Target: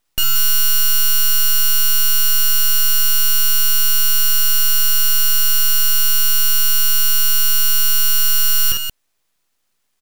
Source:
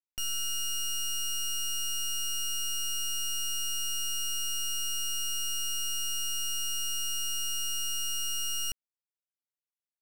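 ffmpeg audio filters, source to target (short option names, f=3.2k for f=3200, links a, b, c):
-af "aexciter=amount=13.6:drive=9.2:freq=6.5k,aecho=1:1:52.48|177.8:0.631|0.398,aeval=exprs='abs(val(0))':c=same,volume=-4dB"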